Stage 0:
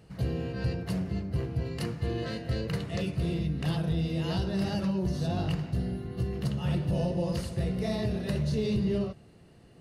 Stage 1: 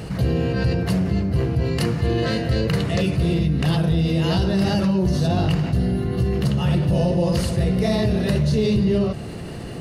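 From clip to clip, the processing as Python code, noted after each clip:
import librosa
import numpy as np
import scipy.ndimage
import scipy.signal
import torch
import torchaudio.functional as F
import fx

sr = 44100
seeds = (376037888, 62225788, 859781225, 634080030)

y = fx.env_flatten(x, sr, amount_pct=50)
y = y * 10.0 ** (8.0 / 20.0)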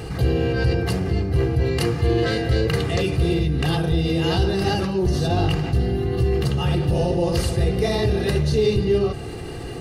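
y = x + 0.57 * np.pad(x, (int(2.5 * sr / 1000.0), 0))[:len(x)]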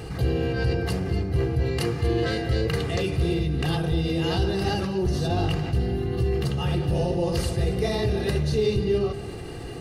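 y = x + 10.0 ** (-16.0 / 20.0) * np.pad(x, (int(239 * sr / 1000.0), 0))[:len(x)]
y = y * 10.0 ** (-4.0 / 20.0)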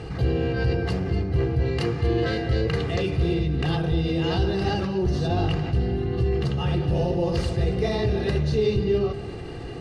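y = fx.air_absorb(x, sr, metres=88.0)
y = y * 10.0 ** (1.0 / 20.0)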